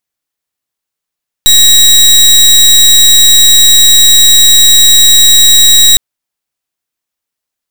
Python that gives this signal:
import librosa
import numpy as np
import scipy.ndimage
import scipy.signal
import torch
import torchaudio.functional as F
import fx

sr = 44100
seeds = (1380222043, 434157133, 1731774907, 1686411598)

y = fx.pulse(sr, length_s=4.51, hz=3830.0, level_db=-3.5, duty_pct=27)